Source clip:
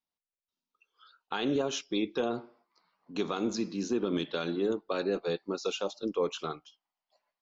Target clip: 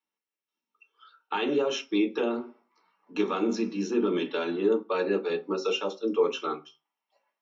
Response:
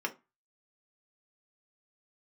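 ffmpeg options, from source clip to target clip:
-filter_complex "[0:a]highpass=160[s0];[1:a]atrim=start_sample=2205[s1];[s0][s1]afir=irnorm=-1:irlink=0"

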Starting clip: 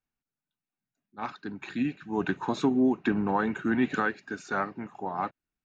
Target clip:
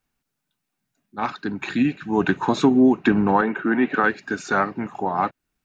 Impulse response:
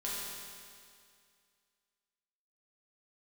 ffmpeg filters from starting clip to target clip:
-filter_complex "[0:a]asplit=2[s0][s1];[s1]acompressor=threshold=0.01:ratio=6,volume=0.75[s2];[s0][s2]amix=inputs=2:normalize=0,asettb=1/sr,asplit=3[s3][s4][s5];[s3]atrim=end=3.414[s6];[s4]atrim=start=3.41:end=4.04,asetpts=PTS-STARTPTS,afade=t=in:d=0.004:c=qsin,afade=t=out:st=0.626:d=0.004:c=qsin,highpass=260,lowpass=2300[s7];[s5]atrim=start=4.036[s8];[s6][s7]acrossfade=d=0.004:c1=hsin:c2=qsin[s9];[s9][s8]acrossfade=d=0.004:c1=qsin:c2=hsin,volume=2.37"

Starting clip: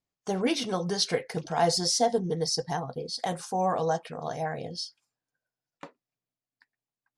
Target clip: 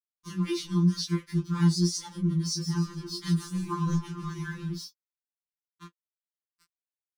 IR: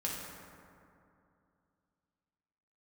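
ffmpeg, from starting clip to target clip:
-filter_complex "[0:a]asettb=1/sr,asplit=3[s0][s1][s2];[s0]atrim=end=2.474[s3];[s1]atrim=start=2.47:end=4.75,asetpts=PTS-STARTPTS,afade=t=in:d=0.004:c=qsin,afade=t=out:st=2.276:d=0.004:c=qsin,asplit=6[s4][s5][s6][s7][s8][s9];[s5]adelay=148,afreqshift=-94,volume=0.422[s10];[s6]adelay=296,afreqshift=-188,volume=0.174[s11];[s7]adelay=444,afreqshift=-282,volume=0.0708[s12];[s8]adelay=592,afreqshift=-376,volume=0.0292[s13];[s9]adelay=740,afreqshift=-470,volume=0.0119[s14];[s4][s10][s11][s12][s13][s14]amix=inputs=6:normalize=0,atrim=end_sample=100548[s15];[s2]atrim=start=4.746[s16];[s3][s15]acrossfade=d=0.004:c1=hsin:c2=qsin[s17];[s17][s16]acrossfade=d=0.004:c1=qsin:c2=hsin,aeval=exprs='sgn(val(0))*max(abs(val(0))-0.00531,0)':c=same,equalizer=f=580:t=o:w=1.5:g=10.5,acompressor=mode=upward:threshold=0.0141:ratio=2.5,asuperstop=centerf=650:order=20:qfactor=1.4,flanger=delay=18.5:depth=4.7:speed=3,equalizer=f=125:t=o:w=1:g=11,equalizer=f=500:t=o:w=1:g=-10,equalizer=f=2000:t=o:w=1:g=-6,alimiter=level_in=1.06:limit=0.0631:level=0:latency=1:release=294,volume=0.944,afftfilt=real='re*2.83*eq(mod(b,8),0)':imag='im*2.83*eq(mod(b,8),0)':win_size=2048:overlap=0.75,volume=1.78"

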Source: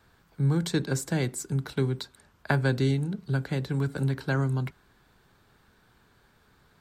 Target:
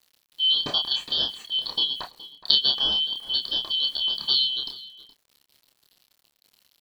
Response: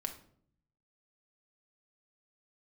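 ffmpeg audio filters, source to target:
-filter_complex "[0:a]afftfilt=real='real(if(lt(b,272),68*(eq(floor(b/68),0)*2+eq(floor(b/68),1)*3+eq(floor(b/68),2)*0+eq(floor(b/68),3)*1)+mod(b,68),b),0)':imag='imag(if(lt(b,272),68*(eq(floor(b/68),0)*2+eq(floor(b/68),1)*3+eq(floor(b/68),2)*0+eq(floor(b/68),3)*1)+mod(b,68),b),0)':win_size=2048:overlap=0.75,lowpass=f=4200:t=q:w=13,tiltshelf=f=970:g=10,bandreject=f=60:t=h:w=6,bandreject=f=120:t=h:w=6,bandreject=f=180:t=h:w=6,bandreject=f=240:t=h:w=6,aeval=exprs='val(0)*gte(abs(val(0)),0.00335)':c=same,asplit=2[s0][s1];[s1]adelay=28,volume=0.631[s2];[s0][s2]amix=inputs=2:normalize=0,asplit=2[s3][s4];[s4]adelay=419.8,volume=0.178,highshelf=f=4000:g=-9.45[s5];[s3][s5]amix=inputs=2:normalize=0,volume=1.12"

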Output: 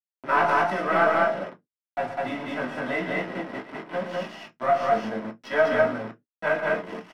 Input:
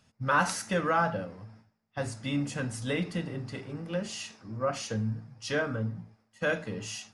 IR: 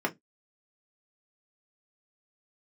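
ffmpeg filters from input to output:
-filter_complex "[0:a]highpass=f=310:p=1,equalizer=f=720:t=o:w=0.43:g=14.5,acrossover=split=800[s0][s1];[s0]alimiter=level_in=1.41:limit=0.0631:level=0:latency=1,volume=0.708[s2];[s1]dynaudnorm=f=200:g=11:m=1.5[s3];[s2][s3]amix=inputs=2:normalize=0,aeval=exprs='(tanh(10*val(0)+0.75)-tanh(0.75))/10':c=same,flanger=delay=16.5:depth=5.6:speed=0.51,acrusher=bits=6:mix=0:aa=0.000001,adynamicsmooth=sensitivity=6:basefreq=3500,aecho=1:1:116.6|201.2:0.316|0.891[s4];[1:a]atrim=start_sample=2205[s5];[s4][s5]afir=irnorm=-1:irlink=0"

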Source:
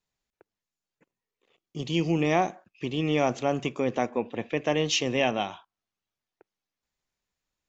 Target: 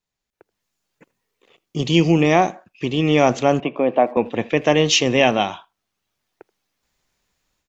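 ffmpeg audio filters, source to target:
-filter_complex "[0:a]dynaudnorm=f=330:g=3:m=5.01,asettb=1/sr,asplit=3[s0][s1][s2];[s0]atrim=end=3.604[s3];[s1]atrim=start=3.6:end=4.17,asetpts=PTS-STARTPTS,afade=t=in:d=0.004:c=qsin,afade=t=out:st=0.566:d=0.004:c=qsin,highpass=f=180:w=0.5412,highpass=f=180:w=1.3066,equalizer=f=220:t=q:w=4:g=-7,equalizer=f=410:t=q:w=4:g=-5,equalizer=f=640:t=q:w=4:g=6,equalizer=f=1400:t=q:w=4:g=-7,equalizer=f=2000:t=q:w=4:g=-8,lowpass=f=2600:w=0.5412,lowpass=f=2600:w=1.3066[s4];[s2]atrim=start=4.166[s5];[s3][s4]acrossfade=d=0.004:c1=hsin:c2=qsin[s6];[s6][s5]acrossfade=d=0.004:c1=qsin:c2=hsin,asplit=2[s7][s8];[s8]adelay=80,highpass=300,lowpass=3400,asoftclip=type=hard:threshold=0.299,volume=0.0631[s9];[s7][s9]amix=inputs=2:normalize=0"

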